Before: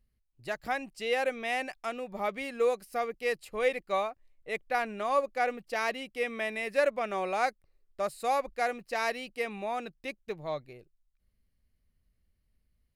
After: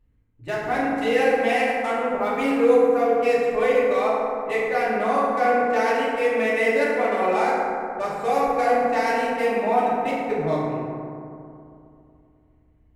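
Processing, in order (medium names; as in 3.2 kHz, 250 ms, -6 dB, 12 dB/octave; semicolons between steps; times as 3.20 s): local Wiener filter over 9 samples; peak limiter -25.5 dBFS, peak gain reduction 10 dB; FDN reverb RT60 2.6 s, low-frequency decay 1.25×, high-frequency decay 0.35×, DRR -9 dB; trim +4 dB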